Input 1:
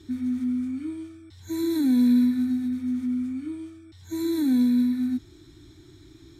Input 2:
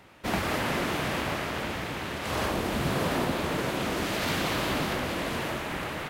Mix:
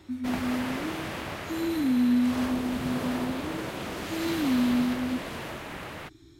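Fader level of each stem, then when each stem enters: −4.0, −5.5 decibels; 0.00, 0.00 seconds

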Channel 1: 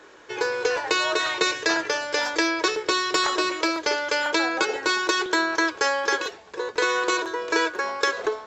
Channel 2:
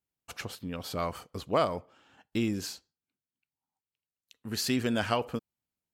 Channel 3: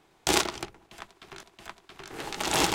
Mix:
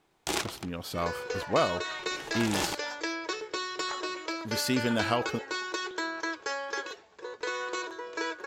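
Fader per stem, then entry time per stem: −11.0, +0.5, −7.0 decibels; 0.65, 0.00, 0.00 seconds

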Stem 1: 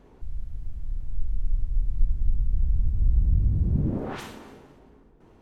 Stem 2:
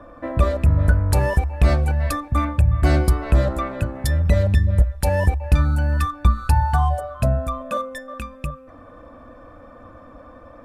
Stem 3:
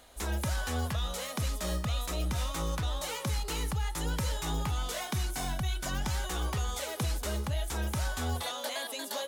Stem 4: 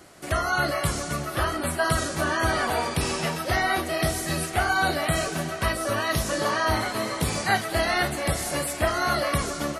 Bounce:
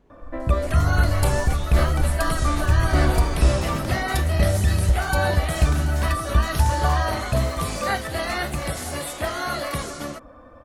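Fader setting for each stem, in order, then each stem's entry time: −5.5, −3.0, −3.0, −3.0 decibels; 0.00, 0.10, 0.60, 0.40 seconds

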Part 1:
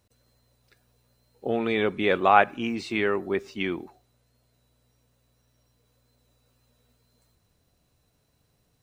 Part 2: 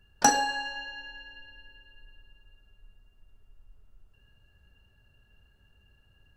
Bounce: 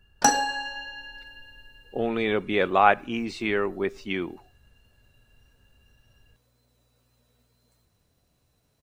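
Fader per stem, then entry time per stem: −0.5, +1.5 decibels; 0.50, 0.00 seconds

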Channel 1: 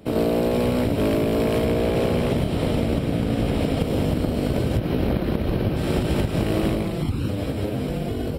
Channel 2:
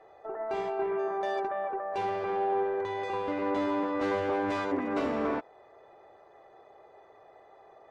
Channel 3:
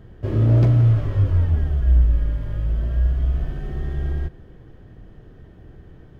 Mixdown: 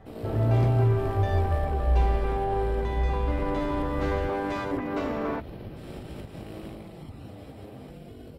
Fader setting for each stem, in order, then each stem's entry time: −18.0, 0.0, −7.5 decibels; 0.00, 0.00, 0.00 seconds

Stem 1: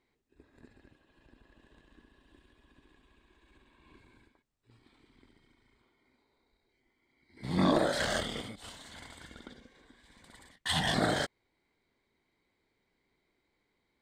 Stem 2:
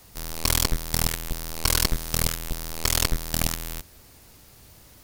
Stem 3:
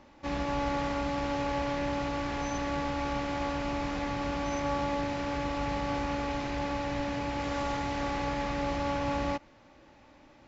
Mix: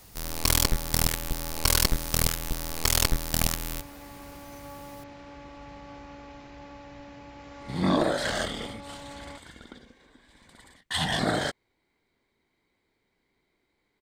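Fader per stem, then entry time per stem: +2.5, −0.5, −13.0 decibels; 0.25, 0.00, 0.00 seconds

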